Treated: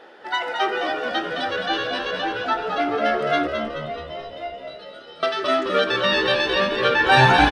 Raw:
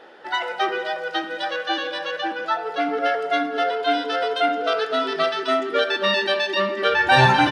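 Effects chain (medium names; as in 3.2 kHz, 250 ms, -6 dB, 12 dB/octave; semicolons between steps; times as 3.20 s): rattle on loud lows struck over -29 dBFS, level -25 dBFS; 3.47–5.23 s: inharmonic resonator 170 Hz, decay 0.63 s, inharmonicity 0.002; frequency-shifting echo 214 ms, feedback 56%, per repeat -72 Hz, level -6 dB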